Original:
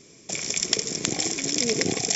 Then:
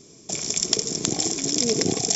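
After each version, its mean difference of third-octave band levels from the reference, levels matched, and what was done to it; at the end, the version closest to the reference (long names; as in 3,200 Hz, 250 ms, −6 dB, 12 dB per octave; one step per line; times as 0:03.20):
1.5 dB: parametric band 2,100 Hz −10 dB 1.1 octaves
notch filter 530 Hz, Q 12
level +3 dB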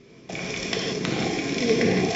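5.0 dB: high-frequency loss of the air 270 metres
reverb whose tail is shaped and stops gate 210 ms flat, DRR −2.5 dB
level +2.5 dB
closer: first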